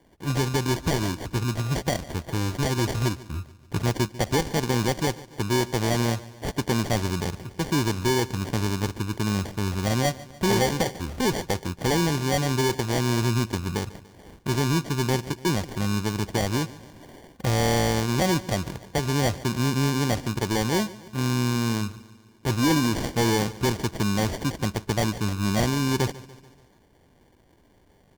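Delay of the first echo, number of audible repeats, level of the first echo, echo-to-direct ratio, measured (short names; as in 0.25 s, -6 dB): 0.145 s, 4, -19.0 dB, -17.5 dB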